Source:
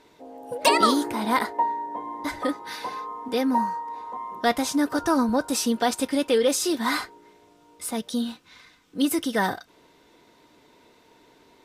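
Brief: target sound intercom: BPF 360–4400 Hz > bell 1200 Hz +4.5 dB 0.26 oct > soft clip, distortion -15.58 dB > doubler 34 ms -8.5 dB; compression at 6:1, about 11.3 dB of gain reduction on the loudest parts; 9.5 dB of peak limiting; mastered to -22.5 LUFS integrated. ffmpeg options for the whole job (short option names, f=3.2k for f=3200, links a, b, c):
-filter_complex "[0:a]acompressor=threshold=-26dB:ratio=6,alimiter=limit=-23dB:level=0:latency=1,highpass=360,lowpass=4.4k,equalizer=f=1.2k:t=o:w=0.26:g=4.5,asoftclip=threshold=-29.5dB,asplit=2[a][b];[b]adelay=34,volume=-8.5dB[c];[a][c]amix=inputs=2:normalize=0,volume=14dB"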